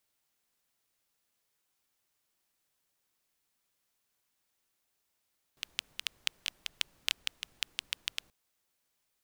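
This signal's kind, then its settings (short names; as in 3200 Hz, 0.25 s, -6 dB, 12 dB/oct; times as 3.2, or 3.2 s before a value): rain from filtered ticks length 2.73 s, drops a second 6.7, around 3000 Hz, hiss -26.5 dB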